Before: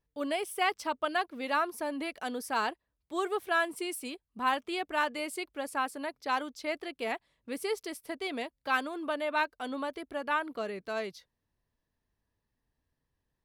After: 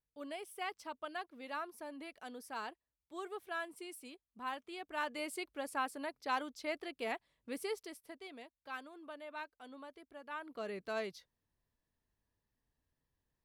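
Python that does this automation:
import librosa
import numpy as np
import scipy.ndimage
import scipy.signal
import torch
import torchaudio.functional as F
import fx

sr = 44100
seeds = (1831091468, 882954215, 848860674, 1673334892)

y = fx.gain(x, sr, db=fx.line((4.78, -12.5), (5.22, -5.0), (7.57, -5.0), (8.35, -16.0), (10.28, -16.0), (10.73, -4.0)))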